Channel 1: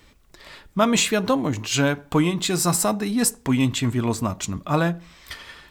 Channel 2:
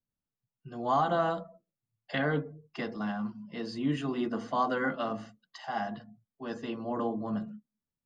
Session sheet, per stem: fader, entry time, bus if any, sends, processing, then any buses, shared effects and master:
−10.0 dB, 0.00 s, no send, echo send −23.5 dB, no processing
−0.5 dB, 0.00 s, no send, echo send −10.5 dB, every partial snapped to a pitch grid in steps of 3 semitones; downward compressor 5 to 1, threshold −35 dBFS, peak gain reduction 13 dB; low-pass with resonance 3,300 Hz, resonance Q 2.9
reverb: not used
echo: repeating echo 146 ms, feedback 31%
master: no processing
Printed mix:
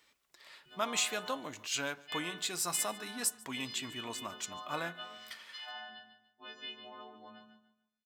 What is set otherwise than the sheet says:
stem 2 −0.5 dB → −7.0 dB
master: extra high-pass filter 1,100 Hz 6 dB per octave

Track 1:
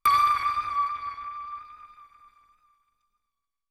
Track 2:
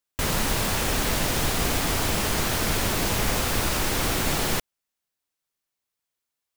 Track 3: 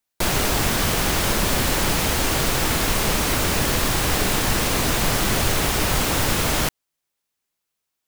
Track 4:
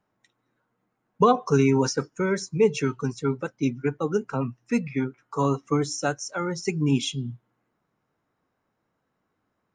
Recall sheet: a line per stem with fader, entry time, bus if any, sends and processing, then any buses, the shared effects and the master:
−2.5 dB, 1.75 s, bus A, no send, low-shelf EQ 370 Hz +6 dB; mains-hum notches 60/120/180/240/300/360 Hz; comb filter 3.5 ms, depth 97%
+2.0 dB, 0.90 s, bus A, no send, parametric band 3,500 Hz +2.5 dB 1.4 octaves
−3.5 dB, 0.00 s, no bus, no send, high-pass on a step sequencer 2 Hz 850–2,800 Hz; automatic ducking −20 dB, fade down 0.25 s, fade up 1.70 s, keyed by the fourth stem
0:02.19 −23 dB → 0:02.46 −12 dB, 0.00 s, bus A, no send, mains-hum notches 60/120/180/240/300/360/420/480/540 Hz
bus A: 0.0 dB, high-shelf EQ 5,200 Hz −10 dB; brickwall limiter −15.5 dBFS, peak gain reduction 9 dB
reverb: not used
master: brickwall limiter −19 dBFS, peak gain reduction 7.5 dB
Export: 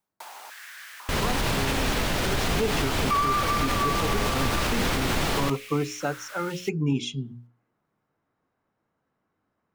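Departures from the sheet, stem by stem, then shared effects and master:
stem 1: entry 1.75 s → 3.05 s
stem 4 −23.0 dB → −11.5 dB
master: missing brickwall limiter −19 dBFS, peak gain reduction 7.5 dB

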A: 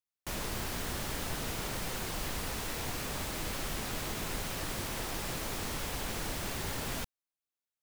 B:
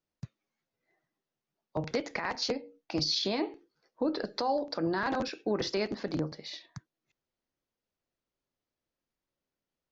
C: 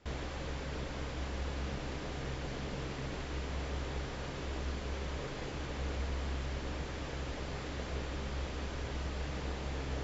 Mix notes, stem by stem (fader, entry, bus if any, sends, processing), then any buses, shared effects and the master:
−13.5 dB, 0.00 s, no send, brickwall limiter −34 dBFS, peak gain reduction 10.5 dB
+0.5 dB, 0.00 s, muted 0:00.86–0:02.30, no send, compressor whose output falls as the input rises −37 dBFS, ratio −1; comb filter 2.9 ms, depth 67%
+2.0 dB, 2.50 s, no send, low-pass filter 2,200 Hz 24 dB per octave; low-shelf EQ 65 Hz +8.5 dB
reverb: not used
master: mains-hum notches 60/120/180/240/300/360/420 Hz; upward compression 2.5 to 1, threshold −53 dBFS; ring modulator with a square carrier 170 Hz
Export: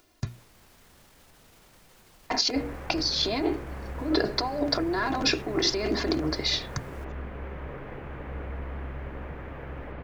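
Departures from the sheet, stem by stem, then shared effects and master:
stem B +0.5 dB → +9.0 dB
stem C: missing low-shelf EQ 65 Hz +8.5 dB
master: missing ring modulator with a square carrier 170 Hz

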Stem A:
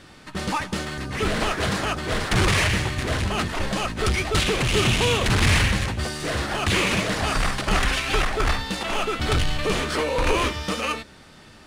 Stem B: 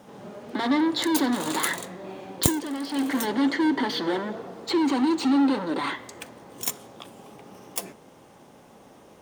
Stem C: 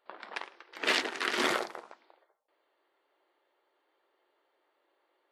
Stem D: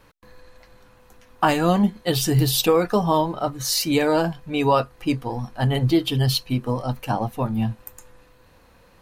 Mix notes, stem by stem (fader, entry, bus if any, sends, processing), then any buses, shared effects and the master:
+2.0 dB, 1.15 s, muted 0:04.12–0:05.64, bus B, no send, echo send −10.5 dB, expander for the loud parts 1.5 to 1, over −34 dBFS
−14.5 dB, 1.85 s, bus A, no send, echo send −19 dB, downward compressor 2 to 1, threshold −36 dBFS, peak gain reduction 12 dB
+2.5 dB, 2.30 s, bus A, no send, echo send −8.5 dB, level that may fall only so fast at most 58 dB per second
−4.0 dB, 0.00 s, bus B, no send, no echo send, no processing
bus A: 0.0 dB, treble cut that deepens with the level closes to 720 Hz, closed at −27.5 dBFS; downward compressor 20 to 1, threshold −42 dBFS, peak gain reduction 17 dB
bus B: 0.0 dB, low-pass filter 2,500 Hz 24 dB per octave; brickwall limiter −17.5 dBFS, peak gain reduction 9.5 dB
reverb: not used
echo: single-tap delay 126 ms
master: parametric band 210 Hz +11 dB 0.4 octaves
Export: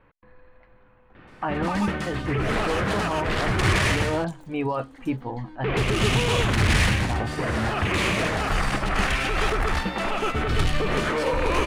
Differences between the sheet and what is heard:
stem A +2.0 dB → +8.0 dB
stem C: missing level that may fall only so fast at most 58 dB per second
master: missing parametric band 210 Hz +11 dB 0.4 octaves

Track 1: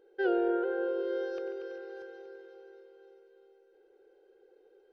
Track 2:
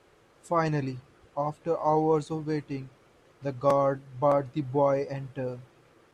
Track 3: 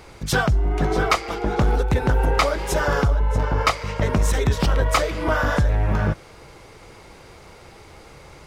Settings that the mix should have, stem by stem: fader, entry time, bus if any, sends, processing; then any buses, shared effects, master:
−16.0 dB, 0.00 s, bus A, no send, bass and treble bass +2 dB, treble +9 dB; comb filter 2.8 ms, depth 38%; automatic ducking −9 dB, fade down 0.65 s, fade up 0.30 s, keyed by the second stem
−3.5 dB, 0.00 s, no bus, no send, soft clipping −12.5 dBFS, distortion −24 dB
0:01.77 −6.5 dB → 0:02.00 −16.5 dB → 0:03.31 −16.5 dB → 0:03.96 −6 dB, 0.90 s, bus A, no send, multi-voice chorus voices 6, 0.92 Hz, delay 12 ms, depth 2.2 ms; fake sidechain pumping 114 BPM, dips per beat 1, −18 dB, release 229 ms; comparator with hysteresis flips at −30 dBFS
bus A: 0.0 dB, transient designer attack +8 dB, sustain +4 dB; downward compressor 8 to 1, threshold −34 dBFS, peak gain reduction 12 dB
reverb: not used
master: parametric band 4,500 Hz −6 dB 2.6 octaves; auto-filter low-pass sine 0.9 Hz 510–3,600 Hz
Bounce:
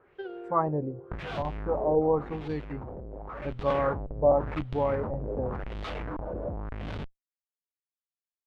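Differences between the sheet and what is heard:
stem 1 −16.0 dB → −10.0 dB
stem 2: missing soft clipping −12.5 dBFS, distortion −24 dB

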